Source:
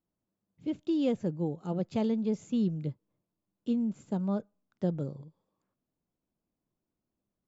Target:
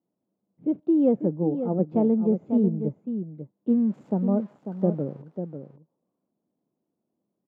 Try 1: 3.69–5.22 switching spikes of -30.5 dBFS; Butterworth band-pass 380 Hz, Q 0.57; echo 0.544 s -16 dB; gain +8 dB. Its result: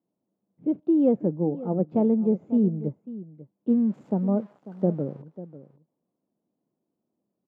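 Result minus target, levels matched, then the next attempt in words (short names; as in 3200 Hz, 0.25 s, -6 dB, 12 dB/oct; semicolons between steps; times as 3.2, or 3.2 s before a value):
echo-to-direct -7 dB
3.69–5.22 switching spikes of -30.5 dBFS; Butterworth band-pass 380 Hz, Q 0.57; echo 0.544 s -9 dB; gain +8 dB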